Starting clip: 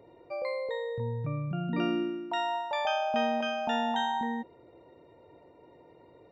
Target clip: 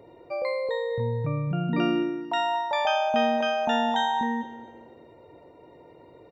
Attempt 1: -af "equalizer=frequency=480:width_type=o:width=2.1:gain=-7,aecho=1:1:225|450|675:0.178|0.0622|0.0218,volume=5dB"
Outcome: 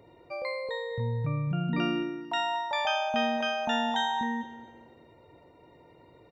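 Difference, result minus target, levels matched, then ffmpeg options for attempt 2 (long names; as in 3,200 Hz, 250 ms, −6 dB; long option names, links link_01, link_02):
500 Hz band −3.0 dB
-af "aecho=1:1:225|450|675:0.178|0.0622|0.0218,volume=5dB"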